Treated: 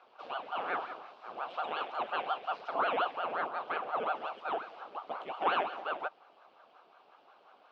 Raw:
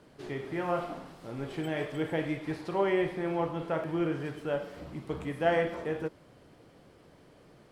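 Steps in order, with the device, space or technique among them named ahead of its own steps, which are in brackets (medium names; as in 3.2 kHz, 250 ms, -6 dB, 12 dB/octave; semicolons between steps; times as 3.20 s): voice changer toy (ring modulator with a swept carrier 590 Hz, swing 85%, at 5.6 Hz; cabinet simulation 530–4300 Hz, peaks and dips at 740 Hz +5 dB, 1.2 kHz +4 dB, 1.9 kHz -9 dB, 2.8 kHz +4 dB)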